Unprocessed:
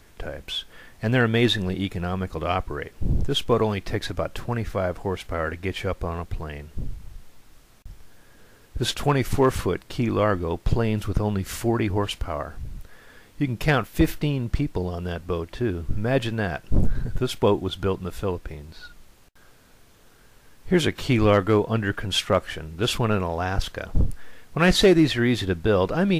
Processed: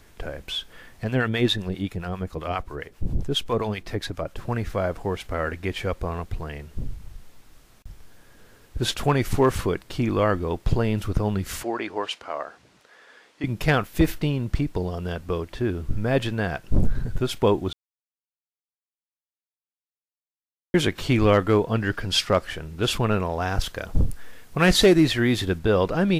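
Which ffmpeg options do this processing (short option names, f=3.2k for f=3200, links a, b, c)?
-filter_complex "[0:a]asettb=1/sr,asplit=3[a][b][c];[a]atrim=end=1.044[d];[b]atrim=start=1.04:end=4.44,asetpts=PTS-STARTPTS,afade=t=in:d=0.004:c=qsin,afade=t=out:st=3.396:d=0.004:c=qsin,acrossover=split=740[e][f];[e]aeval=exprs='val(0)*(1-0.7/2+0.7/2*cos(2*PI*7.5*n/s))':c=same[g];[f]aeval=exprs='val(0)*(1-0.7/2-0.7/2*cos(2*PI*7.5*n/s))':c=same[h];[g][h]amix=inputs=2:normalize=0[i];[c]atrim=start=4.436[j];[d][i]acrossfade=d=0.004:c1=hsin:c2=qsin[k];[k][j]acrossfade=d=0.004:c1=qsin:c2=hsin,asettb=1/sr,asplit=3[l][m][n];[l]atrim=end=11.634[o];[m]atrim=start=11.63:end=13.44,asetpts=PTS-STARTPTS,afade=t=in:d=0.004:c=qsin,afade=t=out:st=1.806:d=0.004:c=qsin,highpass=440,lowpass=6.6k[p];[n]atrim=start=13.436[q];[o][p]acrossfade=d=0.004:c1=hsin:c2=qsin[r];[r][q]acrossfade=d=0.004:c1=qsin:c2=hsin,asettb=1/sr,asplit=3[s][t][u];[s]atrim=end=21.814[v];[t]atrim=start=21.81:end=22.45,asetpts=PTS-STARTPTS,afade=t=in:d=0.004:c=qsin,afade=t=out:st=0.636:d=0.004:c=qsin,equalizer=f=4.9k:w=3.7:g=9[w];[u]atrim=start=22.446[x];[v][w]acrossfade=d=0.004:c1=hsin:c2=qsin[y];[y][x]acrossfade=d=0.004:c1=qsin:c2=hsin,asettb=1/sr,asplit=3[z][aa][ab];[z]atrim=end=23.414[ac];[aa]atrim=start=23.41:end=25.59,asetpts=PTS-STARTPTS,afade=t=in:d=0.004:c=qsin,afade=t=out:st=2.176:d=0.004:c=qsin,highshelf=f=6.6k:g=5.5[ad];[ab]atrim=start=25.586[ae];[ac][ad]acrossfade=d=0.004:c1=hsin:c2=qsin[af];[af][ae]acrossfade=d=0.004:c1=qsin:c2=hsin,asplit=3[ag][ah][ai];[ag]atrim=end=17.73,asetpts=PTS-STARTPTS,afade=t=out:st=17.726:d=0.004:c=hsin[aj];[ah]atrim=start=17.73:end=20.74,asetpts=PTS-STARTPTS,volume=0[ak];[ai]atrim=start=20.74,asetpts=PTS-STARTPTS,afade=t=in:d=0.004:c=hsin[al];[aj][ak][al]concat=n=3:v=0:a=1"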